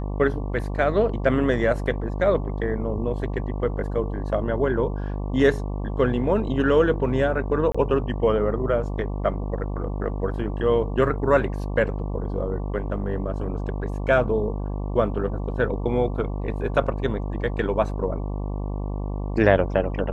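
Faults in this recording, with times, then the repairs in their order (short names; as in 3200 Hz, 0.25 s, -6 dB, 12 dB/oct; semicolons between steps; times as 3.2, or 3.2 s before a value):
buzz 50 Hz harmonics 23 -28 dBFS
7.72–7.75 gap 25 ms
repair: de-hum 50 Hz, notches 23; interpolate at 7.72, 25 ms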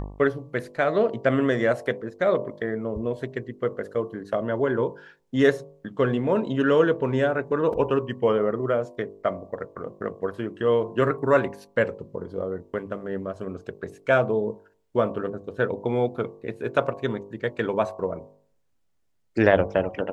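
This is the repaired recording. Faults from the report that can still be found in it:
none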